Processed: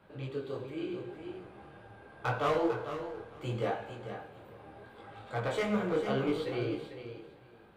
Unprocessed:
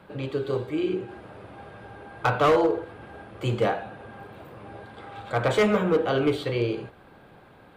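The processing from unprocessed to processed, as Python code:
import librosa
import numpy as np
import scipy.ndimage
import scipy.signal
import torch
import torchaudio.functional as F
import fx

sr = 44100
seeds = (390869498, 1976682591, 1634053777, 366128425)

y = fx.echo_feedback(x, sr, ms=448, feedback_pct=15, wet_db=-9.0)
y = fx.rev_schroeder(y, sr, rt60_s=1.4, comb_ms=30, drr_db=11.0)
y = fx.detune_double(y, sr, cents=27)
y = F.gain(torch.from_numpy(y), -6.0).numpy()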